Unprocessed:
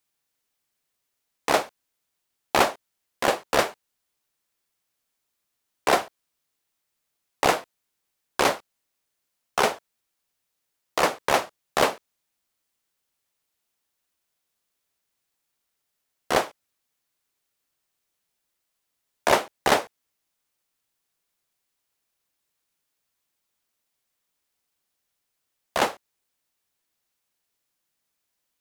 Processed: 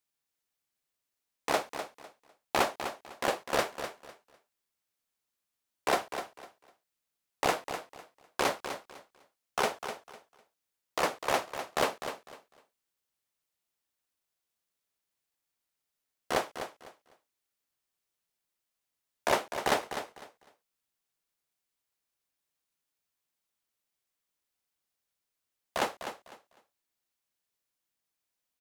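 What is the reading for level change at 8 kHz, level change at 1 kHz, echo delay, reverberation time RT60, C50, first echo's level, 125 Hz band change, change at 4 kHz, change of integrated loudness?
-7.0 dB, -7.0 dB, 251 ms, no reverb, no reverb, -9.5 dB, -7.0 dB, -7.0 dB, -8.5 dB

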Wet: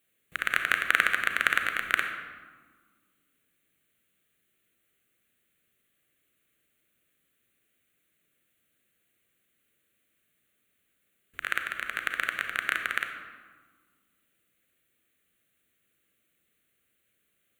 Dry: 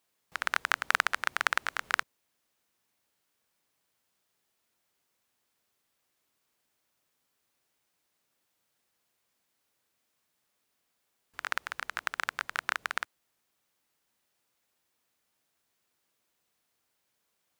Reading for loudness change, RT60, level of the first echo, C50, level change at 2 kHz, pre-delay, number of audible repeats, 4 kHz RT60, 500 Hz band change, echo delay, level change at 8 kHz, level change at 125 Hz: +4.0 dB, 1.6 s, no echo, 6.0 dB, +5.0 dB, 32 ms, no echo, 0.90 s, +1.5 dB, no echo, -0.5 dB, no reading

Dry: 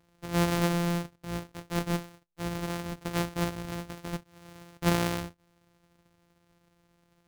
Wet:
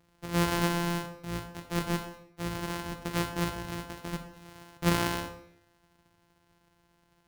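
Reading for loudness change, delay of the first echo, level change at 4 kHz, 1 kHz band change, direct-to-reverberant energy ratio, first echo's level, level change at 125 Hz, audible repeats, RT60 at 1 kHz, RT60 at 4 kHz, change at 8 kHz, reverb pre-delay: -0.5 dB, no echo, +1.5 dB, +1.0 dB, 6.5 dB, no echo, -1.5 dB, no echo, 0.75 s, 0.60 s, +0.5 dB, 30 ms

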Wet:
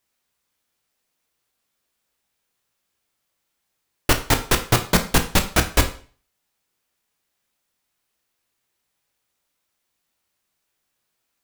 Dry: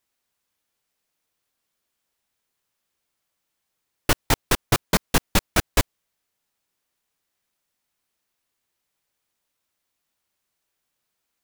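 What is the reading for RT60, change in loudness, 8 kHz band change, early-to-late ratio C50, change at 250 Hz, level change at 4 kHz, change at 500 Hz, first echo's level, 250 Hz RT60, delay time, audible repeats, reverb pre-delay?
0.40 s, +3.0 dB, +3.0 dB, 12.0 dB, +3.0 dB, +3.0 dB, +2.5 dB, no echo, 0.45 s, no echo, no echo, 17 ms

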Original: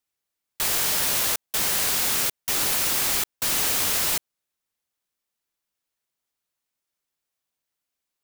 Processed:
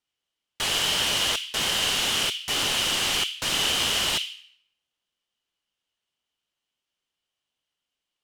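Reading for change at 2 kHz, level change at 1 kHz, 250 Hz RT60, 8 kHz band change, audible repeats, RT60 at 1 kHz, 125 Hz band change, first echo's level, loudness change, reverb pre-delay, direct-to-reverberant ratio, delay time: +2.5 dB, +1.0 dB, 0.90 s, -4.5 dB, no echo, 0.70 s, +1.0 dB, no echo, -1.5 dB, 3 ms, 3.0 dB, no echo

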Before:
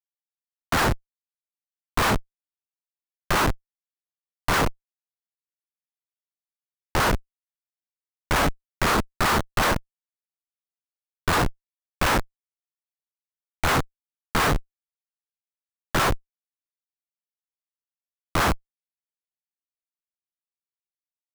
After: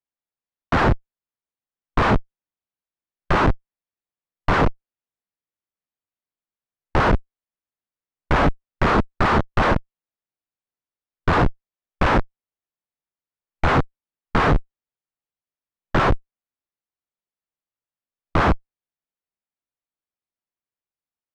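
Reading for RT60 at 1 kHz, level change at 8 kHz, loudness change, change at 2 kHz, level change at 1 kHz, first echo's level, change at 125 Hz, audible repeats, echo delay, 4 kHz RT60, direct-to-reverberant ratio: no reverb, under -10 dB, +3.0 dB, +1.0 dB, +3.5 dB, no echo, +6.0 dB, no echo, no echo, no reverb, no reverb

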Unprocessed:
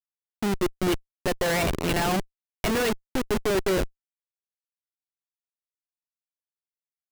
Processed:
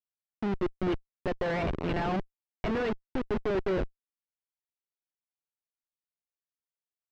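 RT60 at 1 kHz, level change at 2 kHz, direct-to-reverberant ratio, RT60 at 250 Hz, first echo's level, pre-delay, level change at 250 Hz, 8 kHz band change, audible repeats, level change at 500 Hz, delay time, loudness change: no reverb, -8.0 dB, no reverb, no reverb, no echo, no reverb, -4.5 dB, under -25 dB, no echo, -4.5 dB, no echo, -5.5 dB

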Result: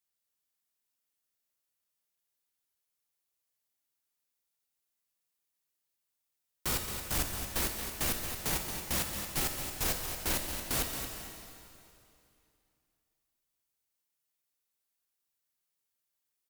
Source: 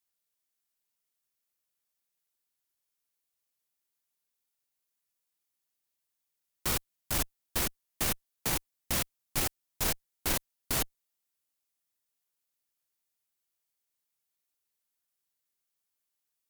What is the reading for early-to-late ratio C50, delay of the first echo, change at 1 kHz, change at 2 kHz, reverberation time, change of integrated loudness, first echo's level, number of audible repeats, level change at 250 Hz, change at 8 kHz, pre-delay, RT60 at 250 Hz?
3.0 dB, 224 ms, -0.5 dB, -0.5 dB, 2.7 s, -0.5 dB, -9.5 dB, 2, -0.5 dB, -0.5 dB, 5 ms, 2.7 s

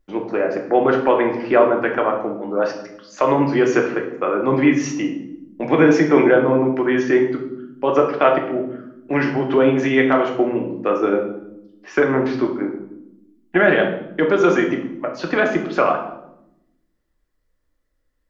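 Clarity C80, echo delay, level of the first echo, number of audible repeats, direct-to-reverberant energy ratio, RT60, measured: 10.0 dB, no echo, no echo, no echo, 1.5 dB, 0.85 s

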